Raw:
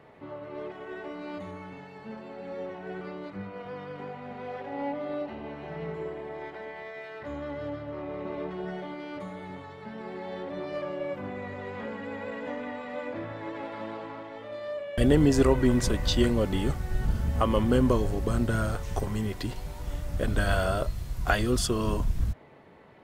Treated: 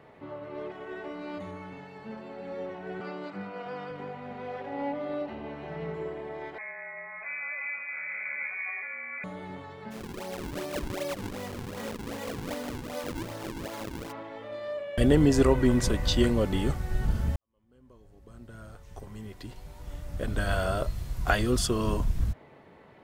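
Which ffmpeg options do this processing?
-filter_complex "[0:a]asettb=1/sr,asplit=3[a][b][c];[a]atrim=end=3.004[d];[b]atrim=start=3:end=3.91,asetpts=PTS-STARTPTS,afade=t=in:d=0.004:c=qsin,afade=t=out:st=0.906:d=0.004:c=qsin,highpass=f=140:w=0.5412,highpass=f=140:w=1.3066,equalizer=f=770:t=q:w=4:g=6,equalizer=f=1.4k:t=q:w=4:g=5,equalizer=f=2.7k:t=q:w=4:g=4,equalizer=f=4.8k:t=q:w=4:g=6,equalizer=f=7.7k:t=q:w=4:g=6,lowpass=f=8.9k:w=0.5412,lowpass=f=8.9k:w=1.3066[e];[c]atrim=start=3.906[f];[d][e]acrossfade=d=0.004:c1=hsin:c2=qsin[g];[g][f]acrossfade=d=0.004:c1=qsin:c2=hsin,asettb=1/sr,asplit=3[h][i][j];[h]atrim=end=6.584[k];[i]atrim=start=6.58:end=9.24,asetpts=PTS-STARTPTS,afade=t=in:d=0.004:c=qsin,afade=t=out:st=2.656:d=0.004:c=qsin,lowpass=f=2.2k:t=q:w=0.5098,lowpass=f=2.2k:t=q:w=0.6013,lowpass=f=2.2k:t=q:w=0.9,lowpass=f=2.2k:t=q:w=2.563,afreqshift=-2600[l];[j]atrim=start=9.236[m];[k][l]acrossfade=d=0.004:c1=hsin:c2=qsin[n];[n][m]acrossfade=d=0.004:c1=qsin:c2=hsin,asplit=3[o][p][q];[o]afade=t=out:st=9.9:d=0.02[r];[p]acrusher=samples=41:mix=1:aa=0.000001:lfo=1:lforange=65.6:lforate=2.6,afade=t=in:st=9.9:d=0.02,afade=t=out:st=14.11:d=0.02[s];[q]afade=t=in:st=14.11:d=0.02[t];[r][s][t]amix=inputs=3:normalize=0,asplit=2[u][v];[u]atrim=end=17.36,asetpts=PTS-STARTPTS,afade=t=out:st=17.356:d=0.004:c=hsin[w];[v]atrim=start=17.36,asetpts=PTS-STARTPTS,afade=t=in:d=3.62:c=qua[x];[w][x]concat=n=2:v=0:a=1"

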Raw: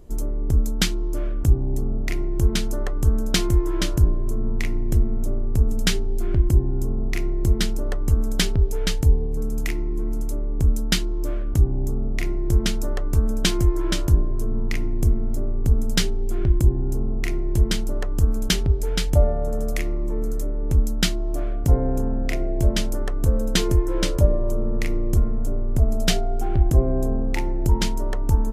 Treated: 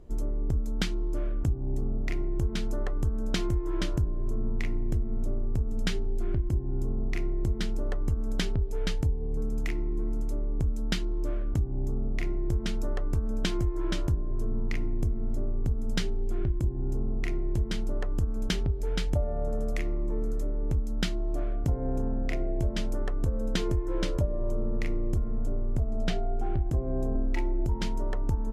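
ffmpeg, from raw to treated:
-filter_complex "[0:a]asettb=1/sr,asplit=3[a][b][c];[a]atrim=end=25.904[d];[b]atrim=start=25.9:end=26.45,asetpts=PTS-STARTPTS,afade=t=in:d=0.004:c=qsin,afade=t=out:st=0.546:d=0.004:c=qsin,aemphasis=mode=reproduction:type=cd[e];[c]atrim=start=26.446[f];[d][e]acrossfade=d=0.004:c1=hsin:c2=qsin[g];[g][f]acrossfade=d=0.004:c1=qsin:c2=hsin,asettb=1/sr,asplit=3[h][i][j];[h]atrim=end=27.154[k];[i]atrim=start=27.15:end=27.66,asetpts=PTS-STARTPTS,afade=t=in:d=0.004:c=qsin,afade=t=out:st=0.506:d=0.004:c=qsin,aecho=1:1:3.1:0.96,atrim=end_sample=22491[l];[j]atrim=start=27.656[m];[k][l]acrossfade=d=0.004:c1=hsin:c2=qsin[n];[n][m]acrossfade=d=0.004:c1=qsin:c2=hsin,aemphasis=mode=reproduction:type=50kf,acompressor=threshold=-19dB:ratio=6,volume=-4dB"

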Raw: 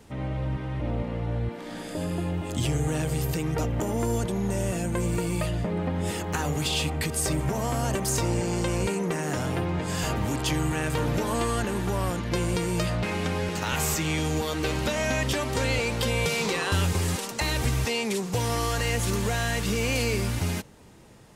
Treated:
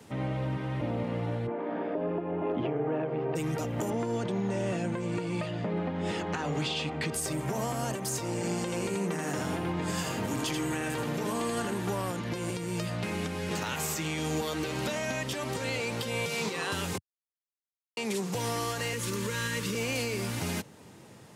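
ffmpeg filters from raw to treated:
-filter_complex "[0:a]asplit=3[a][b][c];[a]afade=t=out:st=1.46:d=0.02[d];[b]highpass=200,equalizer=f=280:t=q:w=4:g=3,equalizer=f=410:t=q:w=4:g=9,equalizer=f=650:t=q:w=4:g=7,equalizer=f=980:t=q:w=4:g=5,equalizer=f=1.9k:t=q:w=4:g=-4,lowpass=f=2.2k:w=0.5412,lowpass=f=2.2k:w=1.3066,afade=t=in:st=1.46:d=0.02,afade=t=out:st=3.35:d=0.02[e];[c]afade=t=in:st=3.35:d=0.02[f];[d][e][f]amix=inputs=3:normalize=0,asettb=1/sr,asplit=3[g][h][i];[g]atrim=end=3.904[j];[h]atrim=start=3.9:end=7.14,asetpts=PTS-STARTPTS,afade=t=in:d=0.004:c=qsin,afade=t=out:st=3.236:d=0.004:c=qsin,highpass=110,lowpass=4.4k[k];[i]atrim=start=7.136[l];[j][k]acrossfade=d=0.004:c1=hsin:c2=qsin[m];[m][l]acrossfade=d=0.004:c1=qsin:c2=hsin,asettb=1/sr,asplit=3[n][o][p];[n]atrim=end=8.354[q];[o]atrim=start=8.35:end=11.74,asetpts=PTS-STARTPTS,afade=t=in:d=0.004:c=qsin,afade=t=out:st=3.386:d=0.004:c=qsin,aecho=1:1:81:0.596,atrim=end_sample=149499[r];[p]atrim=start=11.736[s];[q][r]acrossfade=d=0.004:c1=hsin:c2=qsin[t];[t][s]acrossfade=d=0.004:c1=qsin:c2=hsin,asettb=1/sr,asplit=3[u][v][w];[u]atrim=end=12.504[x];[v]atrim=start=12.5:end=13.51,asetpts=PTS-STARTPTS,afade=t=in:d=0.004:c=qsin,afade=t=out:st=1.006:d=0.004:c=qsin,acrossover=split=380|1400|7200[y][z][aa][ab];[y]acompressor=threshold=-30dB:ratio=3[ac];[z]acompressor=threshold=-42dB:ratio=3[ad];[aa]acompressor=threshold=-41dB:ratio=3[ae];[ab]acompressor=threshold=-49dB:ratio=3[af];[ac][ad][ae][af]amix=inputs=4:normalize=0[ag];[w]atrim=start=13.506[ah];[x][ag]acrossfade=d=0.004:c1=hsin:c2=qsin[ai];[ai][ah]acrossfade=d=0.004:c1=qsin:c2=hsin,asettb=1/sr,asplit=3[aj][ak][al];[aj]atrim=end=18.934[am];[ak]atrim=start=18.93:end=19.75,asetpts=PTS-STARTPTS,afade=t=in:d=0.004:c=qsin,afade=t=out:st=0.816:d=0.004:c=qsin,asuperstop=centerf=730:order=20:qfactor=2.5[an];[al]atrim=start=19.746[ao];[am][an]acrossfade=d=0.004:c1=hsin:c2=qsin[ap];[ap][ao]acrossfade=d=0.004:c1=qsin:c2=hsin,asplit=3[aq][ar][as];[aq]atrim=end=16.98,asetpts=PTS-STARTPTS,afade=t=out:st=16.976:d=0.004:c=hsin[at];[ar]atrim=start=16.98:end=17.97,asetpts=PTS-STARTPTS,volume=0[au];[as]atrim=start=17.97,asetpts=PTS-STARTPTS,afade=t=in:d=0.004:c=hsin[av];[at][au][av]concat=n=3:v=0:a=1,highpass=f=96:w=0.5412,highpass=f=96:w=1.3066,acrossover=split=160[aw][ax];[aw]acompressor=threshold=-36dB:ratio=6[ay];[ay][ax]amix=inputs=2:normalize=0,alimiter=limit=-23dB:level=0:latency=1:release=307,volume=1dB"

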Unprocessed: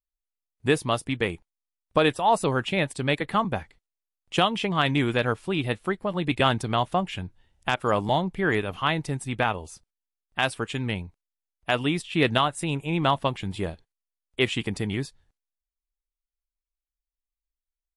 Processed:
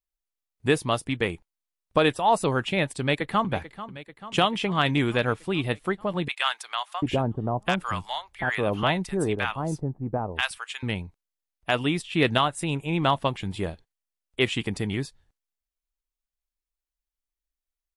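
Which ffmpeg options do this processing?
-filter_complex "[0:a]asplit=2[a][b];[b]afade=t=in:st=3:d=0.01,afade=t=out:st=3.52:d=0.01,aecho=0:1:440|880|1320|1760|2200|2640|3080|3520|3960:0.199526|0.139668|0.0977679|0.0684375|0.0479062|0.0335344|0.0234741|0.0164318|0.0115023[c];[a][c]amix=inputs=2:normalize=0,asettb=1/sr,asplit=3[d][e][f];[d]atrim=end=6.284[g];[e]atrim=start=6.28:end=10.83,asetpts=PTS-STARTPTS,afade=t=in:d=0.004:c=qsin,afade=t=out:st=4.546:d=0.004:c=qsin,acrossover=split=900[h][i];[h]adelay=740[j];[j][i]amix=inputs=2:normalize=0,atrim=end_sample=200655[k];[f]atrim=start=10.826[l];[g][k]acrossfade=d=0.004:c1=hsin:c2=qsin[m];[m][l]acrossfade=d=0.004:c1=qsin:c2=hsin"

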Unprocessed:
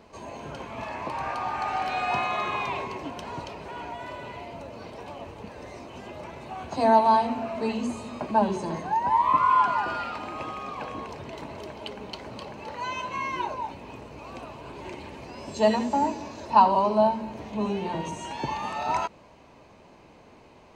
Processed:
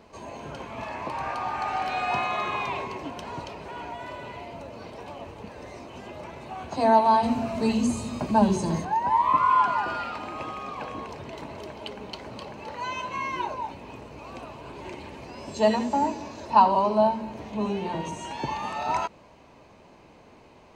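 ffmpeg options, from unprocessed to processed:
-filter_complex "[0:a]asettb=1/sr,asplit=3[a][b][c];[a]atrim=end=7.234[d];[b]atrim=start=7.23:end=8.85,asetpts=PTS-STARTPTS,afade=t=in:d=0.004:c=qsin,afade=t=out:st=1.616:d=0.004:c=qsin,bass=f=250:g=10,treble=f=4k:g=10[e];[c]atrim=start=8.846[f];[d][e]acrossfade=d=0.004:c1=hsin:c2=qsin[g];[g][f]acrossfade=d=0.004:c1=qsin:c2=hsin"

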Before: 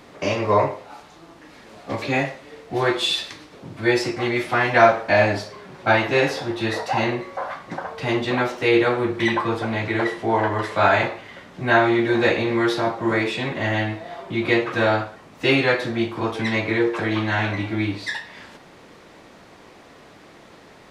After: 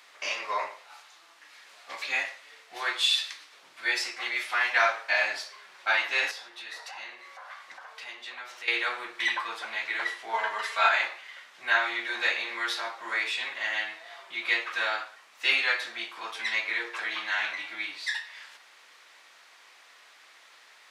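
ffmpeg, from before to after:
-filter_complex "[0:a]asettb=1/sr,asplit=3[a][b][c];[a]atrim=end=6.314[d];[b]atrim=start=6.31:end=8.68,asetpts=PTS-STARTPTS,afade=t=in:d=0.004:c=qsin,afade=t=out:st=2.366:d=0.004:c=qsin,acompressor=threshold=-34dB:ratio=2.5:attack=3.2:release=140:knee=1:detection=peak[e];[c]atrim=start=8.676[f];[d][e]acrossfade=d=0.004:c1=hsin:c2=qsin[g];[g][f]acrossfade=d=0.004:c1=qsin:c2=hsin,asettb=1/sr,asplit=3[h][i][j];[h]atrim=end=10.334[k];[i]atrim=start=10.33:end=10.89,asetpts=PTS-STARTPTS,afade=t=in:d=0.004:c=qsin,afade=t=out:st=0.556:d=0.004:c=qsin,aecho=1:1:4.4:0.93,atrim=end_sample=24696[l];[j]atrim=start=10.886[m];[k][l]acrossfade=d=0.004:c1=hsin:c2=qsin[n];[n][m]acrossfade=d=0.004:c1=qsin:c2=hsin,highpass=1.5k,volume=-1.5dB"

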